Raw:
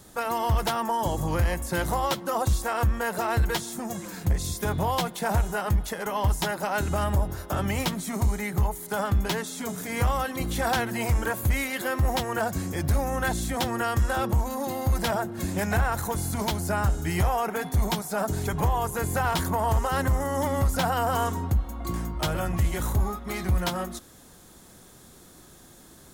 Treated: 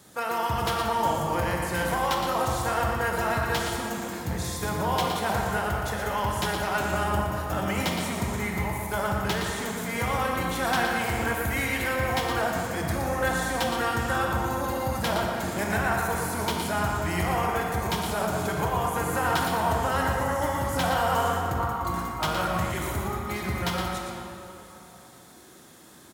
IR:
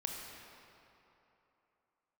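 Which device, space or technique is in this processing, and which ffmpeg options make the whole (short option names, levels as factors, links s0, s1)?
PA in a hall: -filter_complex "[0:a]highpass=110,equalizer=f=2100:t=o:w=2.2:g=3.5,aecho=1:1:117:0.447[s0];[1:a]atrim=start_sample=2205[s1];[s0][s1]afir=irnorm=-1:irlink=0,asettb=1/sr,asplit=3[s2][s3][s4];[s2]atrim=end=21.584[s5];[s3]atrim=start=21.58:end=22.72,asetpts=PTS-STARTPTS,afade=t=in:d=0.004:c=qsin,afade=t=out:st=1.136:d=0.004:c=qsin,equalizer=f=1100:t=o:w=0.85:g=6[s6];[s4]atrim=start=22.716[s7];[s5][s6]acrossfade=d=0.004:c1=hsin:c2=qsin[s8];[s8][s7]acrossfade=d=0.004:c1=qsin:c2=hsin,volume=0.841"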